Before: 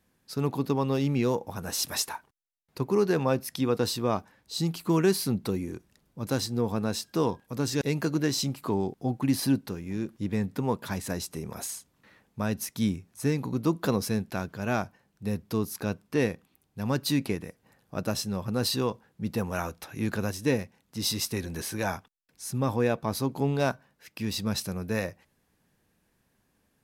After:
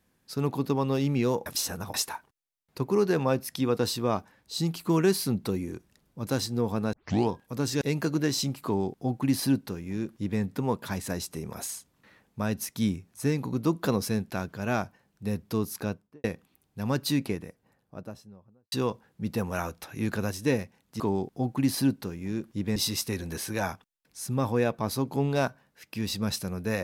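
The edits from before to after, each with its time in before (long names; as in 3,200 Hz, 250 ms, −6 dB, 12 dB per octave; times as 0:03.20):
0:01.46–0:01.94: reverse
0:06.93: tape start 0.36 s
0:08.65–0:10.41: duplicate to 0:21.00
0:15.79–0:16.24: fade out and dull
0:16.97–0:18.72: fade out and dull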